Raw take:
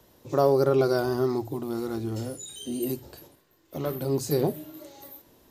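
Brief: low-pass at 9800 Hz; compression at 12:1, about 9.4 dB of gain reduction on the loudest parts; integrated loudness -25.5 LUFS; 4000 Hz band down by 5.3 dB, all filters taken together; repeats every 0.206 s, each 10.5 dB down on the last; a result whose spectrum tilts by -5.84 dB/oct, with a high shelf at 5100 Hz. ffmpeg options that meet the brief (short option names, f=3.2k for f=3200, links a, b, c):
-af "lowpass=9.8k,equalizer=f=4k:t=o:g=-8.5,highshelf=f=5.1k:g=3.5,acompressor=threshold=-26dB:ratio=12,aecho=1:1:206|412|618:0.299|0.0896|0.0269,volume=7dB"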